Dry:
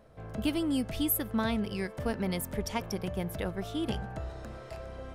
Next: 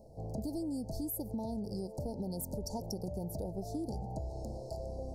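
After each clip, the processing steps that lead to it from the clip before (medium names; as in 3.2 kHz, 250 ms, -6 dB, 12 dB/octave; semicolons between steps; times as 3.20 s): Chebyshev band-stop 880–4400 Hz, order 5; peak limiter -26 dBFS, peak gain reduction 8 dB; compression, threshold -38 dBFS, peak gain reduction 8.5 dB; trim +3 dB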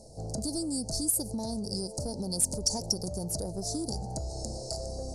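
resonant high shelf 3.5 kHz +7 dB, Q 1.5; saturation -27 dBFS, distortion -19 dB; FFT filter 1.4 kHz 0 dB, 9.8 kHz +11 dB, 14 kHz -17 dB; trim +4 dB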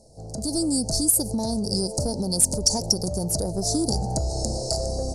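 level rider gain up to 13.5 dB; trim -3 dB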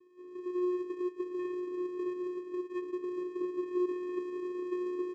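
CVSD coder 16 kbps; on a send: frequency-shifting echo 177 ms, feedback 59%, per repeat -54 Hz, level -10.5 dB; on the sum: vocoder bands 4, square 360 Hz; trim -6.5 dB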